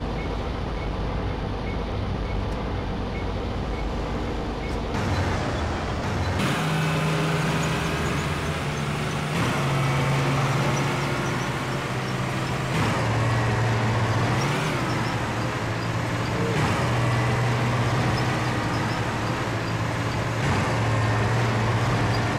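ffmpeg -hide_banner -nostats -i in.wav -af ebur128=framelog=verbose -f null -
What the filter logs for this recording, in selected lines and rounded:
Integrated loudness:
  I:         -25.0 LUFS
  Threshold: -35.0 LUFS
Loudness range:
  LRA:         5.1 LU
  Threshold: -45.0 LUFS
  LRA low:   -28.9 LUFS
  LRA high:  -23.9 LUFS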